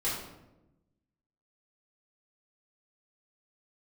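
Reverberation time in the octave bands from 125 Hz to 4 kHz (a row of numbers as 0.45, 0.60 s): 1.4, 1.3, 1.1, 0.85, 0.70, 0.55 s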